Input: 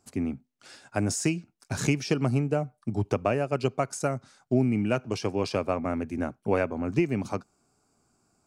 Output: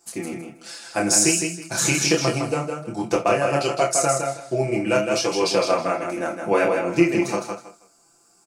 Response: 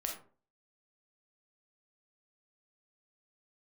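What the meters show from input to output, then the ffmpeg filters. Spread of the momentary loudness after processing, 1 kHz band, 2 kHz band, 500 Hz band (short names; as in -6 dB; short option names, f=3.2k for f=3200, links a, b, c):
12 LU, +9.5 dB, +10.0 dB, +7.5 dB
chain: -filter_complex "[0:a]aecho=1:1:160|320|480:0.531|0.122|0.0281,asplit=2[a][b];[1:a]atrim=start_sample=2205,atrim=end_sample=3087[c];[b][c]afir=irnorm=-1:irlink=0,volume=-2dB[d];[a][d]amix=inputs=2:normalize=0,flanger=delay=22.5:depth=7.2:speed=1.3,bass=f=250:g=-12,treble=f=4k:g=7,aecho=1:1:5.9:1,volume=3.5dB"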